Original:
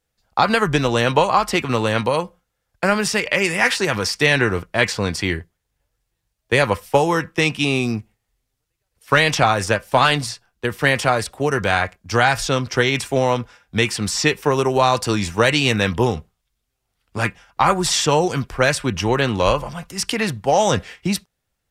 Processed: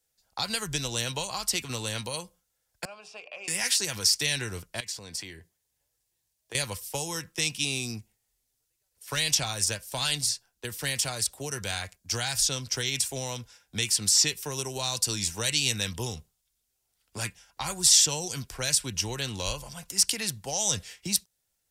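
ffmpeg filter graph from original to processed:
ffmpeg -i in.wav -filter_complex "[0:a]asettb=1/sr,asplit=3[link_01][link_02][link_03];[link_01]atrim=end=2.854[link_04];[link_02]atrim=start=2.85:end=3.48,asetpts=PTS-STARTPTS,afade=type=in:duration=0.004:curve=qsin,afade=type=out:start_time=0.626:duration=0.004:curve=qsin,asplit=3[link_05][link_06][link_07];[link_05]bandpass=frequency=730:width_type=q:width=8,volume=0dB[link_08];[link_06]bandpass=frequency=1090:width_type=q:width=8,volume=-6dB[link_09];[link_07]bandpass=frequency=2440:width_type=q:width=8,volume=-9dB[link_10];[link_08][link_09][link_10]amix=inputs=3:normalize=0,highshelf=frequency=8900:gain=-9,bandreject=frequency=60:width_type=h:width=6,bandreject=frequency=120:width_type=h:width=6,bandreject=frequency=180:width_type=h:width=6,bandreject=frequency=240:width_type=h:width=6,bandreject=frequency=300:width_type=h:width=6,bandreject=frequency=360:width_type=h:width=6,bandreject=frequency=420:width_type=h:width=6,bandreject=frequency=480:width_type=h:width=6,bandreject=frequency=540:width_type=h:width=6[link_11];[link_03]atrim=start=3.476[link_12];[link_04][link_11]acrossfade=duration=0.004:curve1=hsin:curve2=qsin[link_13];[link_13][link_12]acrossfade=duration=0.004:curve1=qsin:curve2=hsin,asettb=1/sr,asplit=3[link_14][link_15][link_16];[link_14]atrim=end=4.804[link_17];[link_15]atrim=start=4.8:end=6.55,asetpts=PTS-STARTPTS,afade=type=in:duration=0.004:curve=qsin,afade=type=out:start_time=1.746:duration=0.004:curve=qsin,bandreject=frequency=1400:width=12,acompressor=threshold=-35dB:ratio=2.5:attack=3.2:release=140:knee=1:detection=peak,highpass=55[link_18];[link_16]atrim=start=6.546[link_19];[link_17][link_18]acrossfade=duration=0.004:curve1=hsin:curve2=qsin[link_20];[link_20][link_19]acrossfade=duration=0.004:curve1=qsin:curve2=hsin,bass=frequency=250:gain=-4,treble=frequency=4000:gain=12,bandreject=frequency=1200:width=13,acrossover=split=160|3000[link_21][link_22][link_23];[link_22]acompressor=threshold=-38dB:ratio=2[link_24];[link_21][link_24][link_23]amix=inputs=3:normalize=0,volume=-7dB" out.wav

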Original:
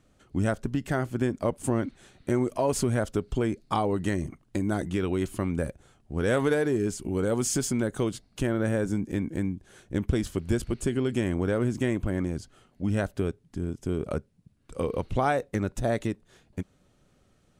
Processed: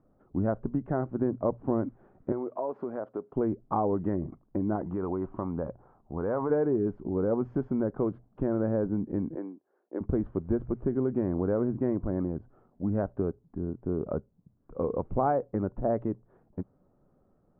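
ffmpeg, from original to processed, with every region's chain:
ffmpeg -i in.wav -filter_complex "[0:a]asettb=1/sr,asplit=3[link_01][link_02][link_03];[link_01]atrim=end=2.324[link_04];[link_02]atrim=start=2.32:end=3.36,asetpts=PTS-STARTPTS,afade=type=in:duration=0.004:curve=qsin,afade=type=out:start_time=1.036:duration=0.004:curve=qsin,highpass=340,acompressor=threshold=-29dB:ratio=2.5:attack=3.2:release=140:knee=1:detection=peak[link_05];[link_03]atrim=start=3.356[link_06];[link_04][link_05]acrossfade=duration=0.004:curve1=hsin:curve2=qsin[link_07];[link_07][link_06]acrossfade=duration=0.004:curve1=qsin:curve2=hsin,asettb=1/sr,asplit=3[link_08][link_09][link_10];[link_08]atrim=end=4.754[link_11];[link_09]atrim=start=4.75:end=6.5,asetpts=PTS-STARTPTS,afade=type=in:duration=0.004:curve=qsin,afade=type=out:start_time=1.746:duration=0.004:curve=qsin,equalizer=frequency=990:width=1.3:gain=9.5,acompressor=threshold=-28dB:ratio=2:attack=3.2:release=140:knee=1:detection=peak[link_12];[link_10]atrim=start=6.496[link_13];[link_11][link_12]acrossfade=duration=0.004:curve1=hsin:curve2=qsin[link_14];[link_14][link_13]acrossfade=duration=0.004:curve1=qsin:curve2=hsin,asettb=1/sr,asplit=3[link_15][link_16][link_17];[link_15]atrim=end=9.354[link_18];[link_16]atrim=start=9.35:end=10.01,asetpts=PTS-STARTPTS,afade=type=in:duration=0.004:curve=qsin,afade=type=out:start_time=0.656:duration=0.004:curve=qsin,agate=range=-13dB:threshold=-46dB:ratio=16:release=100:detection=peak,highpass=frequency=320:width=0.5412,highpass=frequency=320:width=1.3066[link_19];[link_17]atrim=start=10.006[link_20];[link_18][link_19]acrossfade=duration=0.004:curve1=hsin:curve2=qsin[link_21];[link_21][link_20]acrossfade=duration=0.004:curve1=qsin:curve2=hsin,lowpass=frequency=1100:width=0.5412,lowpass=frequency=1100:width=1.3066,equalizer=frequency=61:width=0.65:gain=-6,bandreject=frequency=60:width_type=h:width=6,bandreject=frequency=120:width_type=h:width=6" out.wav

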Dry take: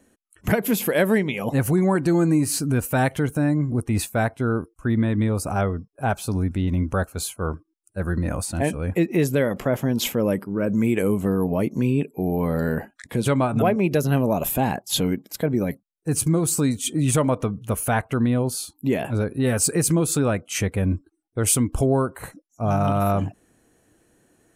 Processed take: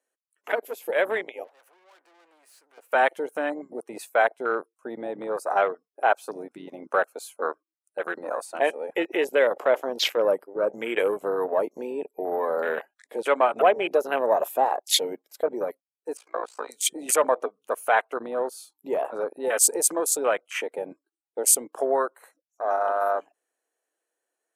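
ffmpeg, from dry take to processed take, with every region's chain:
ffmpeg -i in.wav -filter_complex "[0:a]asettb=1/sr,asplit=3[link_01][link_02][link_03];[link_01]atrim=end=1.444[link_04];[link_02]atrim=start=1.44:end=2.92,asetpts=PTS-STARTPTS,afade=type=in:duration=0.004:curve=qsin,afade=type=out:start_time=1.476:duration=0.004:curve=qsin,acrossover=split=460 2900:gain=0.158 1 0.251[link_05][link_06][link_07];[link_05][link_06][link_07]amix=inputs=3:normalize=0,aeval=exprs='(tanh(70.8*val(0)+0.65)-tanh(0.65))/70.8':channel_layout=same[link_08];[link_03]atrim=start=2.916[link_09];[link_04][link_08]acrossfade=duration=0.004:curve1=hsin:curve2=qsin[link_10];[link_10][link_09]acrossfade=duration=0.004:curve1=qsin:curve2=hsin,asettb=1/sr,asplit=3[link_11][link_12][link_13];[link_11]atrim=end=16.174[link_14];[link_12]atrim=start=16.17:end=16.69,asetpts=PTS-STARTPTS,afade=type=in:duration=0.004:curve=qsin,afade=type=out:start_time=0.516:duration=0.004:curve=qsin,asplit=2[link_15][link_16];[link_16]highpass=frequency=720:poles=1,volume=14dB,asoftclip=type=tanh:threshold=-7dB[link_17];[link_15][link_17]amix=inputs=2:normalize=0,lowpass=frequency=1800:poles=1,volume=-6dB,acrossover=split=460 6000:gain=0.126 1 0.178[link_18][link_19][link_20];[link_18][link_19][link_20]amix=inputs=3:normalize=0,tremolo=f=57:d=0.889[link_21];[link_13]atrim=start=16.686[link_22];[link_14][link_21]acrossfade=duration=0.004:curve1=hsin:curve2=qsin[link_23];[link_23][link_22]acrossfade=duration=0.004:curve1=qsin:curve2=hsin,highpass=frequency=470:width=0.5412,highpass=frequency=470:width=1.3066,dynaudnorm=framelen=360:gausssize=13:maxgain=6dB,afwtdn=0.0447,volume=-1.5dB" out.wav

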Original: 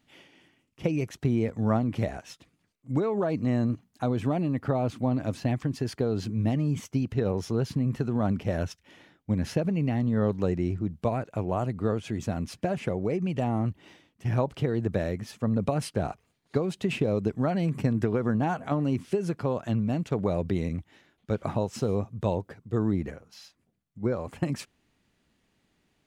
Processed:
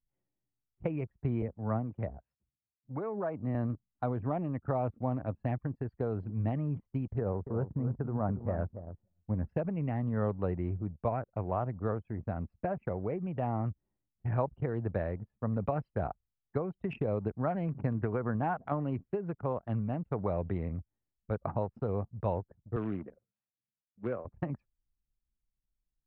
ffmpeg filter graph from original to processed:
ffmpeg -i in.wav -filter_complex "[0:a]asettb=1/sr,asplit=3[link_01][link_02][link_03];[link_01]atrim=end=1.424[link_04];[link_02]atrim=start=1.42:end=3.55,asetpts=PTS-STARTPTS,afade=type=in:duration=0.004:curve=qsin,afade=type=out:start_time=2.126:duration=0.004:curve=qsin,highpass=frequency=58:width=0.5412,highpass=frequency=58:width=1.3066,acrossover=split=450[link_05][link_06];[link_05]aeval=exprs='val(0)*(1-0.5/2+0.5/2*cos(2*PI*2.9*n/s))':channel_layout=same[link_07];[link_06]aeval=exprs='val(0)*(1-0.5/2-0.5/2*cos(2*PI*2.9*n/s))':channel_layout=same[link_08];[link_07][link_08]amix=inputs=2:normalize=0[link_09];[link_03]atrim=start=3.546[link_10];[link_04][link_09]acrossfade=duration=0.004:curve1=hsin:curve2=qsin[link_11];[link_11][link_10]acrossfade=duration=0.004:curve1=qsin:curve2=hsin,asettb=1/sr,asplit=3[link_12][link_13][link_14];[link_12]atrim=end=7.184[link_15];[link_13]atrim=start=7.18:end=9.49,asetpts=PTS-STARTPTS,afade=type=in:duration=0.004:curve=qsin,afade=type=out:start_time=2.306:duration=0.004:curve=qsin,lowpass=1400,aecho=1:1:282|564:0.316|0.0538,atrim=end_sample=101871[link_16];[link_14]atrim=start=9.486[link_17];[link_15][link_16]acrossfade=duration=0.004:curve1=hsin:curve2=qsin[link_18];[link_18][link_17]acrossfade=duration=0.004:curve1=qsin:curve2=hsin,asettb=1/sr,asplit=3[link_19][link_20][link_21];[link_19]atrim=end=22.764[link_22];[link_20]atrim=start=22.76:end=24.25,asetpts=PTS-STARTPTS,afade=type=in:duration=0.004:curve=qsin,afade=type=out:start_time=1.486:duration=0.004:curve=qsin,acrusher=bits=5:mode=log:mix=0:aa=0.000001,highpass=frequency=120:width=0.5412,highpass=frequency=120:width=1.3066,equalizer=frequency=150:width_type=q:width=4:gain=-9,equalizer=frequency=880:width_type=q:width=4:gain=-6,equalizer=frequency=2600:width_type=q:width=4:gain=6,lowpass=frequency=4100:width=0.5412,lowpass=frequency=4100:width=1.3066[link_23];[link_21]atrim=start=24.246[link_24];[link_22][link_23]acrossfade=duration=0.004:curve1=hsin:curve2=qsin[link_25];[link_25][link_24]acrossfade=duration=0.004:curve1=qsin:curve2=hsin,aemphasis=mode=reproduction:type=bsi,anlmdn=39.8,acrossover=split=560 2400:gain=0.224 1 0.178[link_26][link_27][link_28];[link_26][link_27][link_28]amix=inputs=3:normalize=0,volume=-1dB" out.wav

